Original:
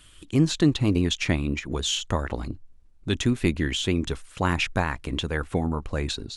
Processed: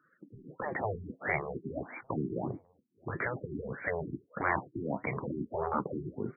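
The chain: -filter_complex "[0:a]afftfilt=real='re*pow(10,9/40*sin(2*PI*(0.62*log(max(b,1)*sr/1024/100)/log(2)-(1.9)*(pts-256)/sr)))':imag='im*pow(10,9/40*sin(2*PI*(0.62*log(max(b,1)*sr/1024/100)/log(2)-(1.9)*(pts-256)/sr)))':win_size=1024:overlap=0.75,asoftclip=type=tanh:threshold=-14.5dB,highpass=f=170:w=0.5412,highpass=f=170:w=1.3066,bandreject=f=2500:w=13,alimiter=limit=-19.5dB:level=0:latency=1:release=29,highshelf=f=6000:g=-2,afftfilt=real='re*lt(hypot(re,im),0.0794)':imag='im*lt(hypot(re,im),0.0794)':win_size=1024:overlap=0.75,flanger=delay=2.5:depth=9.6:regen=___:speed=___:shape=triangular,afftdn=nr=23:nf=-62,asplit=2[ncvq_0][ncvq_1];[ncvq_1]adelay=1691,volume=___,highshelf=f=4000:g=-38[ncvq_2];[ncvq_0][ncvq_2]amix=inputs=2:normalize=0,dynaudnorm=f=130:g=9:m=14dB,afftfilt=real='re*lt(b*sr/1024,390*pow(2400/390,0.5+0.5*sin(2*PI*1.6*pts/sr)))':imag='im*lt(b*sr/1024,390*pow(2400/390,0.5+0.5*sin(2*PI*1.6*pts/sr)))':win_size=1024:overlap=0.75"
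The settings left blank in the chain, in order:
-70, 0.53, -28dB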